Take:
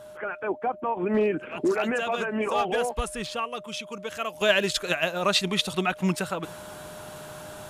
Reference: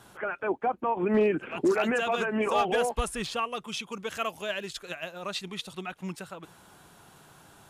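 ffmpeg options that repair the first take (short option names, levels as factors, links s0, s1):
-af "bandreject=f=610:w=30,asetnsamples=n=441:p=0,asendcmd='4.41 volume volume -11.5dB',volume=1"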